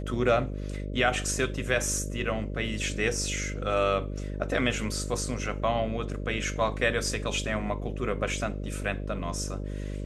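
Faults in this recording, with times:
buzz 50 Hz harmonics 12 -34 dBFS

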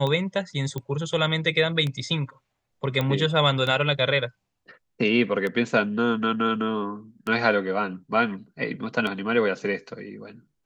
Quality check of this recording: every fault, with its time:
tick 33 1/3 rpm -16 dBFS
0.78 pop -18 dBFS
3.01 pop -13 dBFS

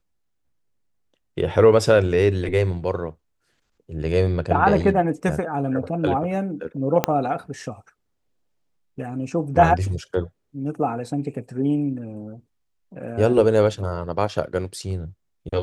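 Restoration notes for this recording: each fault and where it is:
7.04 pop -3 dBFS

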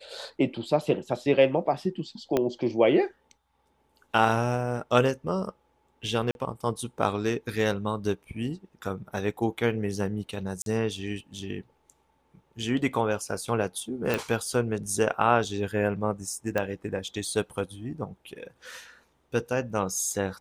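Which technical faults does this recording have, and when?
2.37 pop -11 dBFS
6.31–6.35 gap 41 ms
10.62–10.66 gap 42 ms
14.14 pop
16.58 pop -14 dBFS

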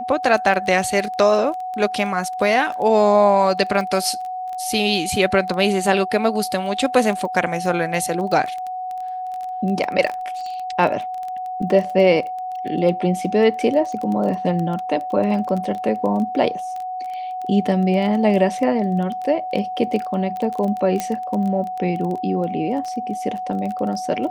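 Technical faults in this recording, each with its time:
crackle 14/s -25 dBFS
tone 740 Hz -25 dBFS
21 pop -8 dBFS

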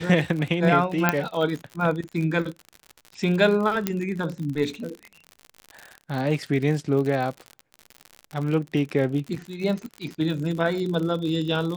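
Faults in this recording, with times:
crackle 70/s -30 dBFS
1.09 pop -4 dBFS
3.87 pop -8 dBFS

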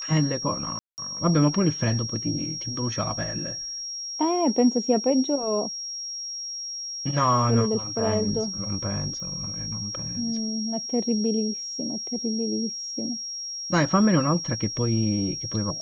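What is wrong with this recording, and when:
tone 5600 Hz -31 dBFS
0.79–0.98 gap 0.189 s
9.2 pop -27 dBFS

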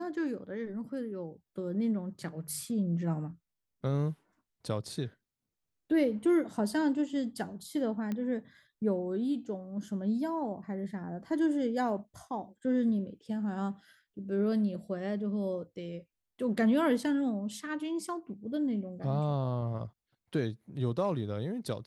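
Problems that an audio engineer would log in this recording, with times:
8.12 pop -23 dBFS

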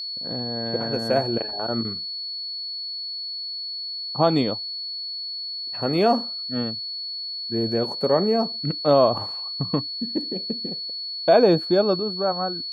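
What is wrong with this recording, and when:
tone 4400 Hz -29 dBFS

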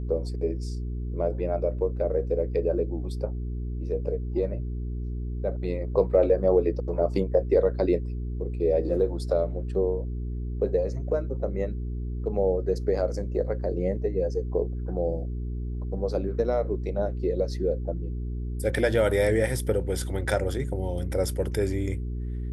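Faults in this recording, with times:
hum 60 Hz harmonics 7 -31 dBFS

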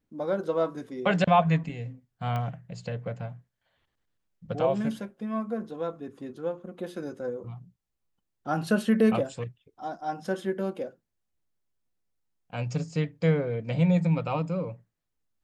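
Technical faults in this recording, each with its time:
2.36 pop -21 dBFS

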